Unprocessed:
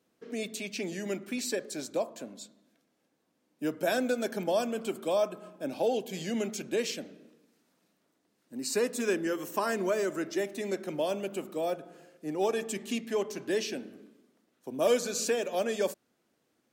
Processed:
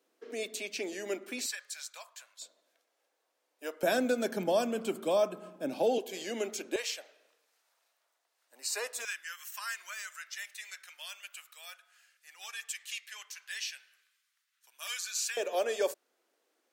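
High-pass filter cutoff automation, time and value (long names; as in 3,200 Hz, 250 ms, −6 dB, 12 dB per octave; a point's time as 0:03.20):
high-pass filter 24 dB per octave
310 Hz
from 0:01.46 1,200 Hz
from 0:02.42 490 Hz
from 0:03.83 140 Hz
from 0:05.98 300 Hz
from 0:06.76 660 Hz
from 0:09.05 1,500 Hz
from 0:15.37 370 Hz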